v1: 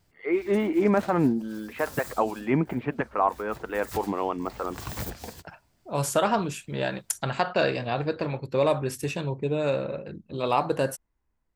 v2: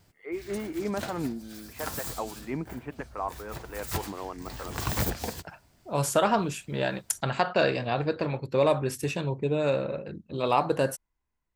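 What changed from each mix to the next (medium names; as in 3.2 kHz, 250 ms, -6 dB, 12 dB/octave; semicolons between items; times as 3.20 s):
first voice -9.5 dB; background +6.0 dB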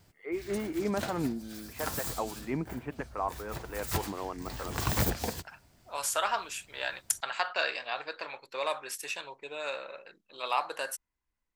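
second voice: add high-pass 1.1 kHz 12 dB/octave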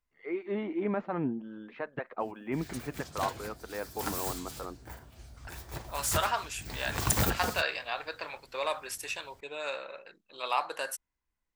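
background: entry +2.20 s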